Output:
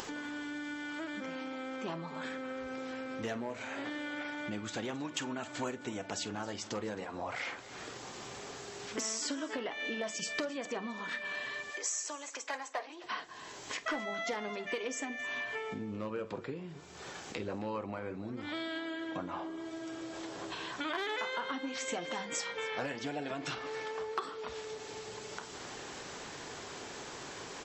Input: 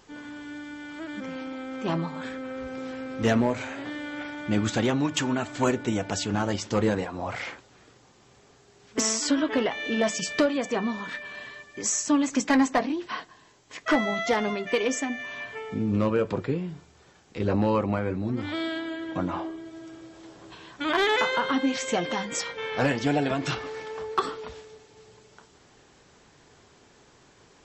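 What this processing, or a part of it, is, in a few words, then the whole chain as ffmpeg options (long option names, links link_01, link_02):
upward and downward compression: -filter_complex "[0:a]acompressor=mode=upward:threshold=-34dB:ratio=2.5,acompressor=threshold=-37dB:ratio=4,asettb=1/sr,asplit=3[link_01][link_02][link_03];[link_01]atrim=end=11.704[link_04];[link_02]atrim=start=11.7:end=13.04,asetpts=PTS-STARTPTS,afade=type=in:duration=0.004:curve=qsin,afade=type=out:start_time=1.336:duration=0.004:curve=qsin,highpass=frequency=450:width=0.5412,highpass=frequency=450:width=1.3066[link_05];[link_03]atrim=start=13.036[link_06];[link_04][link_05]acrossfade=duration=0.004:curve1=hsin:curve2=qsin[link_07];[link_07][link_06]acrossfade=duration=0.004:curve1=qsin:curve2=hsin,lowshelf=frequency=190:gain=-11,aecho=1:1:47|266:0.141|0.119,volume=2dB"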